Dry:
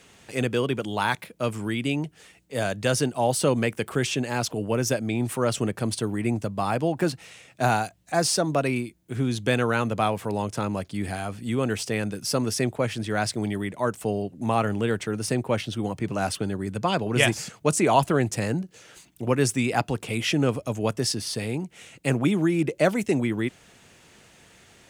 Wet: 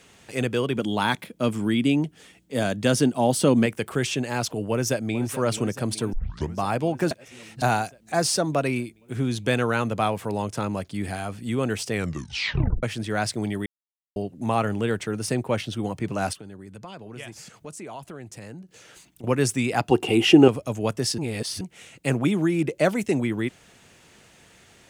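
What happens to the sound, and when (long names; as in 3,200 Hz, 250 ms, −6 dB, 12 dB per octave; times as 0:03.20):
0:00.75–0:03.66: hollow resonant body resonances 240/3,300 Hz, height 8 dB, ringing for 20 ms
0:04.71–0:05.26: delay throw 430 ms, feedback 75%, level −13.5 dB
0:06.13: tape start 0.44 s
0:07.11–0:07.62: reverse
0:11.93: tape stop 0.90 s
0:13.66–0:14.16: silence
0:16.33–0:19.24: downward compressor 2.5 to 1, threshold −44 dBFS
0:19.91–0:20.48: hollow resonant body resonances 360/770/2,800 Hz, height 17 dB, ringing for 30 ms
0:21.18–0:21.61: reverse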